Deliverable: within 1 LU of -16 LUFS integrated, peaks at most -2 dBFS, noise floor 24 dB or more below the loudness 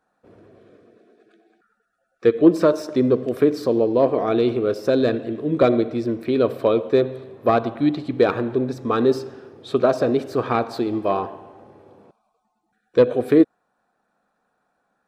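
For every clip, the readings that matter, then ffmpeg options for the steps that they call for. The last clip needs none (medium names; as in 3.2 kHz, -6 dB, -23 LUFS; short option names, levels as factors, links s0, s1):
loudness -20.5 LUFS; peak level -2.5 dBFS; loudness target -16.0 LUFS
-> -af "volume=1.68,alimiter=limit=0.794:level=0:latency=1"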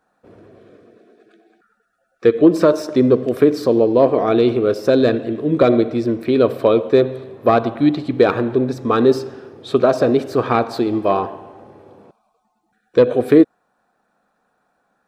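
loudness -16.5 LUFS; peak level -2.0 dBFS; noise floor -68 dBFS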